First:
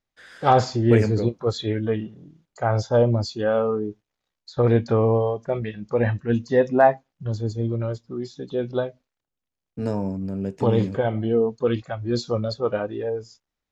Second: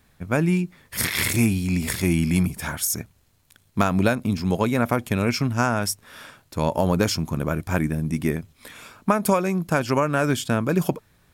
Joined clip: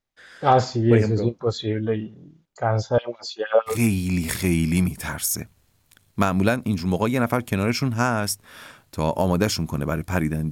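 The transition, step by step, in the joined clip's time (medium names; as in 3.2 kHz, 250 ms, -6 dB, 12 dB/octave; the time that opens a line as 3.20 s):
first
2.98–3.84 s: LFO high-pass sine 6.4 Hz 490–3300 Hz
3.75 s: go over to second from 1.34 s, crossfade 0.18 s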